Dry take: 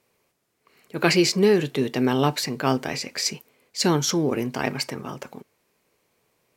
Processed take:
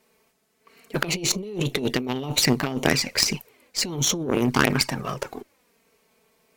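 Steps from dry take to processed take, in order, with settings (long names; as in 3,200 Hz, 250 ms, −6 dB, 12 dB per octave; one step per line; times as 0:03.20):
flanger swept by the level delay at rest 4.6 ms, full sweep at −20 dBFS
compressor whose output falls as the input rises −29 dBFS, ratio −1
harmonic generator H 6 −11 dB, 7 −27 dB, 8 −13 dB, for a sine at −9.5 dBFS
level +6 dB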